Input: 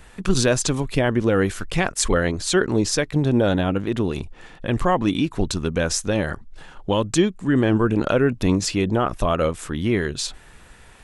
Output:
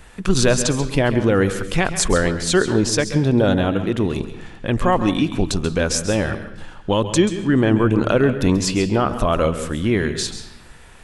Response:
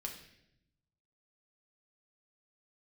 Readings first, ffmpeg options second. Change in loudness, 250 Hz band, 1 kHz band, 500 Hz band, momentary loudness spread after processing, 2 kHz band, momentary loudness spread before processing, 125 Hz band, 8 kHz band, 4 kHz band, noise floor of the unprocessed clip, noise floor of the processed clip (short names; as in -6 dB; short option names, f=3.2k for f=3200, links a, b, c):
+2.5 dB, +2.5 dB, +2.5 dB, +2.5 dB, 8 LU, +2.5 dB, 7 LU, +2.5 dB, +2.5 dB, +2.5 dB, -47 dBFS, -43 dBFS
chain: -filter_complex "[0:a]asplit=2[a][b];[1:a]atrim=start_sample=2205,adelay=134[c];[b][c]afir=irnorm=-1:irlink=0,volume=-8.5dB[d];[a][d]amix=inputs=2:normalize=0,volume=2dB"